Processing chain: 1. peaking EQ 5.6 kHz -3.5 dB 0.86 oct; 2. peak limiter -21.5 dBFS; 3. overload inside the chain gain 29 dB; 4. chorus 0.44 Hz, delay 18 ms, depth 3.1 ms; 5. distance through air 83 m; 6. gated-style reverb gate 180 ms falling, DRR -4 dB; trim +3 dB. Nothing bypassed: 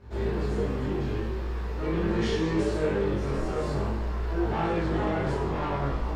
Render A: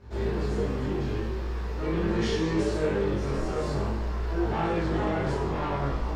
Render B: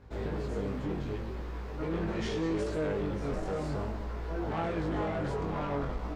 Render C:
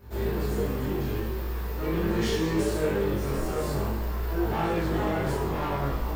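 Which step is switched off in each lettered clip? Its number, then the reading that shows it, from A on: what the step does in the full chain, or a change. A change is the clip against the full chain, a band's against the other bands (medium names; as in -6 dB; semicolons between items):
1, 8 kHz band +2.5 dB; 6, momentary loudness spread change +1 LU; 5, 8 kHz band +7.0 dB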